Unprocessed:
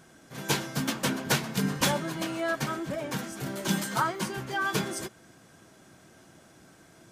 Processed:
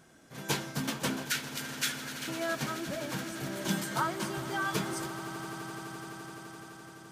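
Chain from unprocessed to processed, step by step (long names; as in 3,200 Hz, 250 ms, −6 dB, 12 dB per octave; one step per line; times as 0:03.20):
0:01.25–0:02.28: Butterworth high-pass 1,300 Hz 96 dB per octave
echo that builds up and dies away 85 ms, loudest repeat 8, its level −17.5 dB
level −4 dB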